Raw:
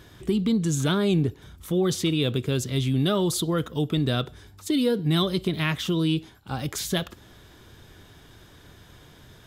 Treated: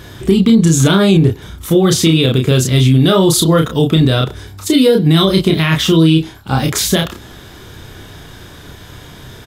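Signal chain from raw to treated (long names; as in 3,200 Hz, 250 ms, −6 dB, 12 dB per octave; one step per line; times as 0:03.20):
double-tracking delay 31 ms −3.5 dB
boost into a limiter +14.5 dB
level −1 dB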